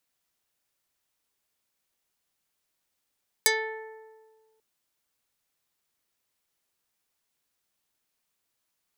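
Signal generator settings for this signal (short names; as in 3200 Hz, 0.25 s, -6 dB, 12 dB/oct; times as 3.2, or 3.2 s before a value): plucked string A4, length 1.14 s, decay 1.64 s, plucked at 0.32, dark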